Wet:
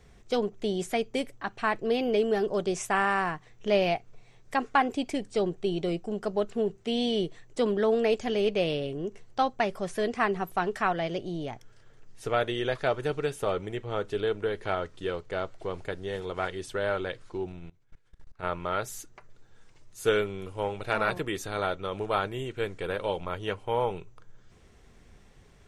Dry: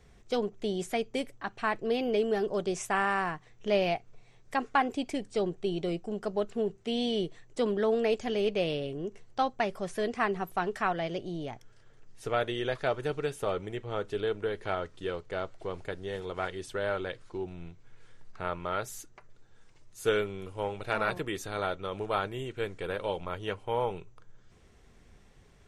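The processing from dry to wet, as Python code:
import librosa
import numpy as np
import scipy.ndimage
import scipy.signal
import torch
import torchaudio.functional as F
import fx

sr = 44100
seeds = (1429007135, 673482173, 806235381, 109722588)

y = fx.level_steps(x, sr, step_db=22, at=(17.52, 18.43))
y = y * 10.0 ** (2.5 / 20.0)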